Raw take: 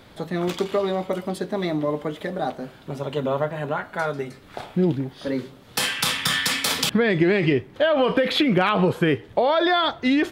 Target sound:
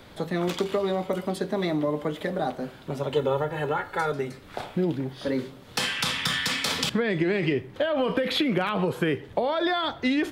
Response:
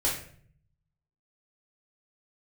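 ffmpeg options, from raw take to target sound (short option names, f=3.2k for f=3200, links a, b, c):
-filter_complex "[0:a]asplit=2[a][b];[1:a]atrim=start_sample=2205,atrim=end_sample=6174[c];[b][c]afir=irnorm=-1:irlink=0,volume=-26.5dB[d];[a][d]amix=inputs=2:normalize=0,acrossover=split=260|7800[e][f][g];[e]acompressor=threshold=-30dB:ratio=4[h];[f]acompressor=threshold=-24dB:ratio=4[i];[g]acompressor=threshold=-45dB:ratio=4[j];[h][i][j]amix=inputs=3:normalize=0,asettb=1/sr,asplit=3[k][l][m];[k]atrim=end=3.134[n];[l]atrim=start=3.13:end=4.12,asetpts=PTS-STARTPTS,afade=t=in:d=0.004:c=qsin,afade=t=out:st=0.986:d=0.004:c=qsin,aecho=1:1:2.3:0.74,atrim=end_sample=43659[o];[m]atrim=start=4.116[p];[n][o]acrossfade=d=0.004:c1=hsin:c2=qsin[q];[q][p]acrossfade=d=0.004:c1=qsin:c2=hsin"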